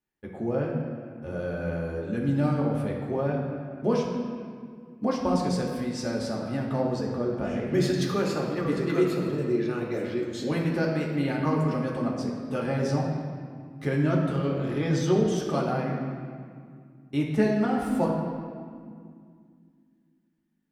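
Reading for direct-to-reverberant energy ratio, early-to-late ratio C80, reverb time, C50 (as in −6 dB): −2.5 dB, 4.0 dB, 2.1 s, 2.5 dB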